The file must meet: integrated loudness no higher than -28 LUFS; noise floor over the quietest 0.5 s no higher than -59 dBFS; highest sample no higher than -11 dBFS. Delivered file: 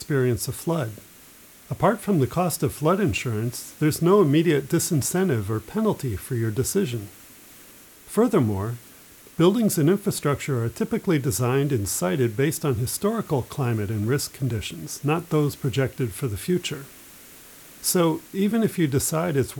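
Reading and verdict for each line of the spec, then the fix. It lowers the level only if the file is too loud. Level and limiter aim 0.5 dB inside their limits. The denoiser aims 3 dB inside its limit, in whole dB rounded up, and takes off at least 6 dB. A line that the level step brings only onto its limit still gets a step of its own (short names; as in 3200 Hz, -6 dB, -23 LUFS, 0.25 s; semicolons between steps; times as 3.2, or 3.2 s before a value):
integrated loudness -23.5 LUFS: fail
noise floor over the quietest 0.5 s -49 dBFS: fail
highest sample -8.0 dBFS: fail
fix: denoiser 8 dB, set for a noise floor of -49 dBFS; gain -5 dB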